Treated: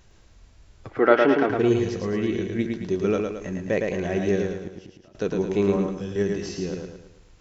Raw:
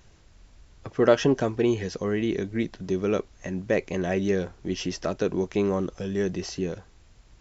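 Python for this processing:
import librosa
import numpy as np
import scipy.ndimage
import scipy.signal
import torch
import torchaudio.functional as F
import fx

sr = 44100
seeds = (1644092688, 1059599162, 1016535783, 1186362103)

p1 = fx.gate_flip(x, sr, shuts_db=-23.0, range_db=-28, at=(4.59, 5.15))
p2 = fx.level_steps(p1, sr, step_db=12)
p3 = p1 + (p2 * librosa.db_to_amplitude(-2.0))
p4 = fx.cabinet(p3, sr, low_hz=280.0, low_slope=12, high_hz=4000.0, hz=(310.0, 780.0, 1400.0, 2100.0, 3000.0), db=(7, 7, 9, 9, -3), at=(0.89, 1.5))
p5 = p4 + fx.echo_feedback(p4, sr, ms=110, feedback_pct=45, wet_db=-4.5, dry=0)
p6 = fx.hpss(p5, sr, part='percussive', gain_db=-5)
p7 = fx.band_widen(p6, sr, depth_pct=70, at=(5.76, 6.16))
y = p7 * librosa.db_to_amplitude(-1.5)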